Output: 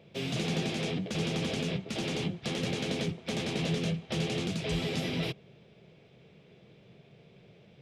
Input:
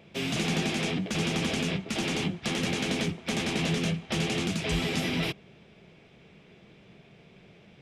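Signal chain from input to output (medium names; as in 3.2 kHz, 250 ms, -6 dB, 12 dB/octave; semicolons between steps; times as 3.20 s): graphic EQ 125/500/4000 Hz +9/+8/+5 dB; trim -8 dB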